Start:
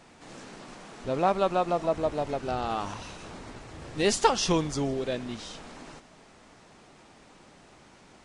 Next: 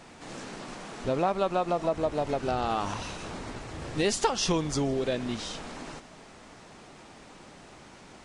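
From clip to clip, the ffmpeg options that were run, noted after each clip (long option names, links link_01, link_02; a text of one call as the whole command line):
ffmpeg -i in.wav -af "acompressor=threshold=-30dB:ratio=2.5,volume=4.5dB" out.wav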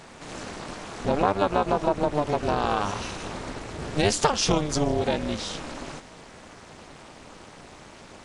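ffmpeg -i in.wav -af "tremolo=f=300:d=1,volume=8dB" out.wav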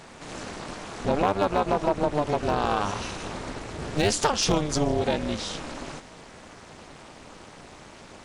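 ffmpeg -i in.wav -af "volume=13dB,asoftclip=hard,volume=-13dB" out.wav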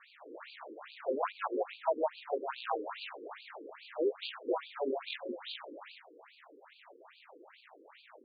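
ffmpeg -i in.wav -af "afftfilt=real='re*between(b*sr/1024,360*pow(3400/360,0.5+0.5*sin(2*PI*2.4*pts/sr))/1.41,360*pow(3400/360,0.5+0.5*sin(2*PI*2.4*pts/sr))*1.41)':imag='im*between(b*sr/1024,360*pow(3400/360,0.5+0.5*sin(2*PI*2.4*pts/sr))/1.41,360*pow(3400/360,0.5+0.5*sin(2*PI*2.4*pts/sr))*1.41)':win_size=1024:overlap=0.75,volume=-4dB" out.wav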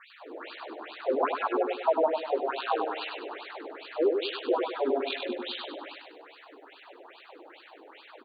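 ffmpeg -i in.wav -af "aecho=1:1:99|198|297|396|495:0.562|0.225|0.09|0.036|0.0144,volume=6dB" out.wav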